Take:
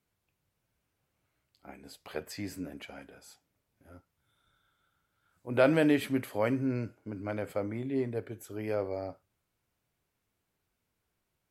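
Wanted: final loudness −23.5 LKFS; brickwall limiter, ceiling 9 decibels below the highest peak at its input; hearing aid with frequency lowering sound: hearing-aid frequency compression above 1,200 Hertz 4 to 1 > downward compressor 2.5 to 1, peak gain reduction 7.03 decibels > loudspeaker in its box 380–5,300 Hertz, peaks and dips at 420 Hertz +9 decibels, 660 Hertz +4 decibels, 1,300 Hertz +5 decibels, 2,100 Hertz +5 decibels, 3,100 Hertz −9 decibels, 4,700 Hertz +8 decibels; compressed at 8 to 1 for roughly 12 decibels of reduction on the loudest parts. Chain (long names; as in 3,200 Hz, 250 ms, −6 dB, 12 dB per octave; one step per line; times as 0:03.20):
downward compressor 8 to 1, threshold −31 dBFS
brickwall limiter −29.5 dBFS
hearing-aid frequency compression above 1,200 Hz 4 to 1
downward compressor 2.5 to 1, threshold −43 dBFS
loudspeaker in its box 380–5,300 Hz, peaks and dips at 420 Hz +9 dB, 660 Hz +4 dB, 1,300 Hz +5 dB, 2,100 Hz +5 dB, 3,100 Hz −9 dB, 4,700 Hz +8 dB
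level +21.5 dB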